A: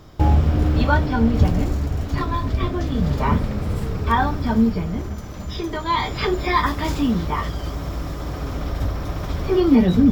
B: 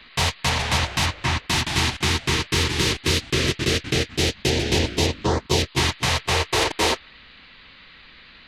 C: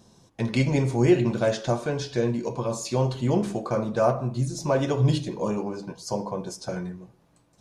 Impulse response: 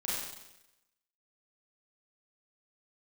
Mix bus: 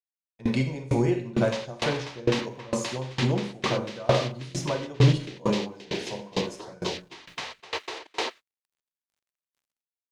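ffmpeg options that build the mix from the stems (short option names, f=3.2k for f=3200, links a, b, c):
-filter_complex "[1:a]acompressor=threshold=-29dB:ratio=2,acrusher=bits=7:mix=0:aa=0.000001,acrossover=split=240 6600:gain=0.0631 1 0.1[a][b][c];[a][b][c]amix=inputs=3:normalize=0,adelay=1350,volume=2dB[d];[2:a]highshelf=f=9.2k:g=-7,volume=1dB,asplit=2[e][f];[f]volume=-5.5dB[g];[3:a]atrim=start_sample=2205[h];[g][h]afir=irnorm=-1:irlink=0[i];[d][e][i]amix=inputs=3:normalize=0,agate=range=-29dB:threshold=-37dB:ratio=16:detection=peak,acrusher=bits=10:mix=0:aa=0.000001,aeval=exprs='val(0)*pow(10,-25*if(lt(mod(2.2*n/s,1),2*abs(2.2)/1000),1-mod(2.2*n/s,1)/(2*abs(2.2)/1000),(mod(2.2*n/s,1)-2*abs(2.2)/1000)/(1-2*abs(2.2)/1000))/20)':c=same"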